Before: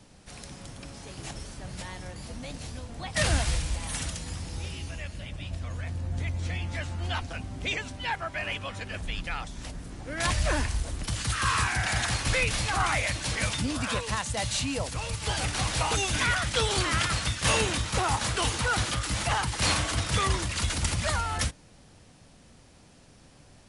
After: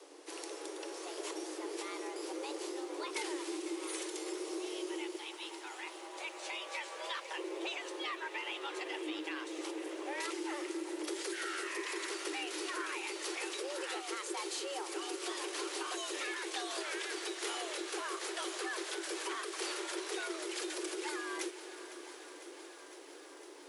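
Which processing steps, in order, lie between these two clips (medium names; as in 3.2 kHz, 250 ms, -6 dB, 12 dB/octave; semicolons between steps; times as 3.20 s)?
5.16–7.36 s: high-pass 540 Hz -> 180 Hz 24 dB/octave; compression 8:1, threshold -36 dBFS, peak gain reduction 16 dB; frequency shift +280 Hz; echo that smears into a reverb 712 ms, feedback 55%, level -15 dB; bit-crushed delay 505 ms, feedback 80%, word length 11-bit, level -15 dB; trim -1 dB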